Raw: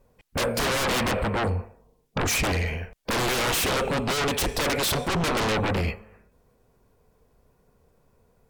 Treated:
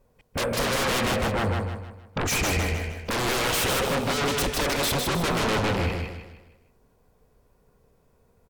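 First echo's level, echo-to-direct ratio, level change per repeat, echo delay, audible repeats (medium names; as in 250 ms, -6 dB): -4.0 dB, -3.5 dB, -8.0 dB, 155 ms, 4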